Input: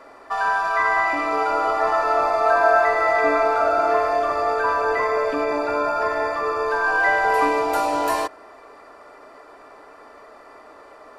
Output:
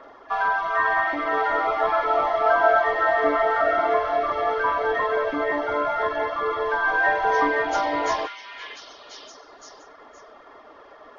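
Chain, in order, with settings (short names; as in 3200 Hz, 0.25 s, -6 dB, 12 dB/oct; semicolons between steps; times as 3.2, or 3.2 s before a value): nonlinear frequency compression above 1600 Hz 1.5:1; reverb removal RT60 0.75 s; delay with a stepping band-pass 0.519 s, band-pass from 2500 Hz, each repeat 0.7 oct, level -1 dB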